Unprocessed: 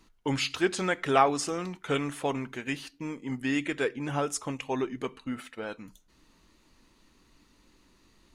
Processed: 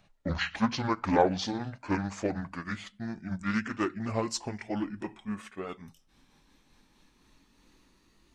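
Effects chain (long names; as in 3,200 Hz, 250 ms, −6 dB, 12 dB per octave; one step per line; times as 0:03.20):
pitch glide at a constant tempo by −8.5 semitones ending unshifted
highs frequency-modulated by the lows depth 0.21 ms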